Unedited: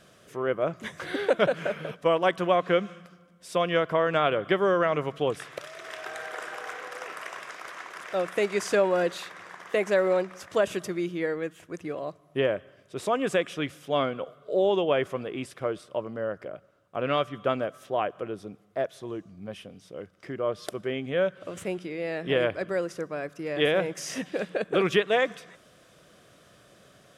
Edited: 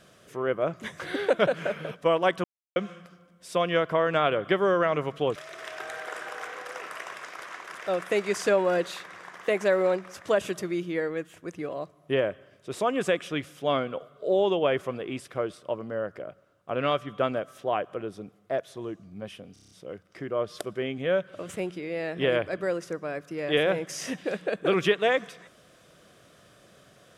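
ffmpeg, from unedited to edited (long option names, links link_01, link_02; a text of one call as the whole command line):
ffmpeg -i in.wav -filter_complex "[0:a]asplit=10[link_01][link_02][link_03][link_04][link_05][link_06][link_07][link_08][link_09][link_10];[link_01]atrim=end=2.44,asetpts=PTS-STARTPTS,afade=type=out:start_time=2.436:duration=0.004:curve=hsin[link_11];[link_02]atrim=start=2.44:end=2.76,asetpts=PTS-STARTPTS,volume=0[link_12];[link_03]atrim=start=2.76:end=5.362,asetpts=PTS-STARTPTS,afade=type=in:duration=0.004:curve=hsin[link_13];[link_04]atrim=start=5.618:end=19.822[link_14];[link_05]atrim=start=19.788:end=19.822[link_15];[link_06]atrim=start=19.788:end=19.822[link_16];[link_07]atrim=start=19.788:end=19.822[link_17];[link_08]atrim=start=19.788:end=19.822[link_18];[link_09]atrim=start=19.788:end=19.822[link_19];[link_10]atrim=start=19.788[link_20];[link_11][link_12][link_13]concat=n=3:v=0:a=1[link_21];[link_21][link_14]acrossfade=duration=0.004:curve1=hsin:curve2=hsin[link_22];[link_22][link_15]acrossfade=duration=0.004:curve1=hsin:curve2=hsin[link_23];[link_23][link_16]acrossfade=duration=0.004:curve1=hsin:curve2=hsin[link_24];[link_24][link_17]acrossfade=duration=0.004:curve1=hsin:curve2=hsin[link_25];[link_25][link_18]acrossfade=duration=0.004:curve1=hsin:curve2=hsin[link_26];[link_26][link_19]acrossfade=duration=0.004:curve1=hsin:curve2=hsin[link_27];[link_27][link_20]acrossfade=duration=0.004:curve1=hsin:curve2=hsin" out.wav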